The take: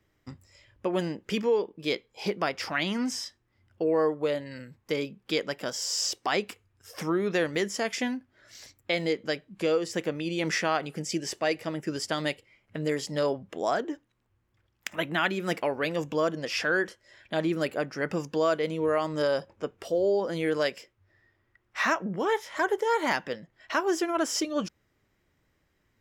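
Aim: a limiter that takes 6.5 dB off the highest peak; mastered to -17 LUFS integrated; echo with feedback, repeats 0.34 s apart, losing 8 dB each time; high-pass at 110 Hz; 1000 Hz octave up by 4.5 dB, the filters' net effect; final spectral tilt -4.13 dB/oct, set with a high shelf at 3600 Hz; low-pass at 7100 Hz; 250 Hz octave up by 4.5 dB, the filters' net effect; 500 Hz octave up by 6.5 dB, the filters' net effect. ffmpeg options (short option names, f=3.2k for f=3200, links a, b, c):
-af "highpass=110,lowpass=7.1k,equalizer=f=250:t=o:g=3.5,equalizer=f=500:t=o:g=6,equalizer=f=1k:t=o:g=4,highshelf=f=3.6k:g=-4,alimiter=limit=-15dB:level=0:latency=1,aecho=1:1:340|680|1020|1360|1700:0.398|0.159|0.0637|0.0255|0.0102,volume=9.5dB"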